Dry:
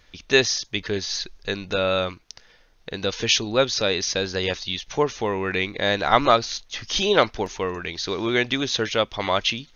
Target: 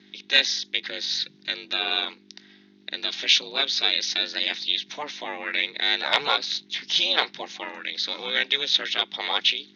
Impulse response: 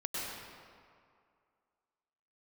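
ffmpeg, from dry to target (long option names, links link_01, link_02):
-filter_complex "[0:a]bandreject=frequency=2200:width=8.7,acrossover=split=580|1200[link_01][link_02][link_03];[link_02]aeval=exprs='(mod(3.16*val(0)+1,2)-1)/3.16':channel_layout=same[link_04];[link_01][link_04][link_03]amix=inputs=3:normalize=0,acontrast=40,aeval=exprs='val(0)+0.0178*(sin(2*PI*50*n/s)+sin(2*PI*2*50*n/s)/2+sin(2*PI*3*50*n/s)/3+sin(2*PI*4*50*n/s)/4+sin(2*PI*5*50*n/s)/5)':channel_layout=same,equalizer=frequency=490:width=1.4:gain=-14.5,aeval=exprs='val(0)*sin(2*PI*150*n/s)':channel_layout=same,highpass=frequency=260:width=0.5412,highpass=frequency=260:width=1.3066,equalizer=frequency=260:width_type=q:width=4:gain=-8,equalizer=frequency=380:width_type=q:width=4:gain=-4,equalizer=frequency=740:width_type=q:width=4:gain=3,equalizer=frequency=1200:width_type=q:width=4:gain=-7,equalizer=frequency=2100:width_type=q:width=4:gain=7,equalizer=frequency=3700:width_type=q:width=4:gain=8,lowpass=frequency=5400:width=0.5412,lowpass=frequency=5400:width=1.3066,volume=-3.5dB"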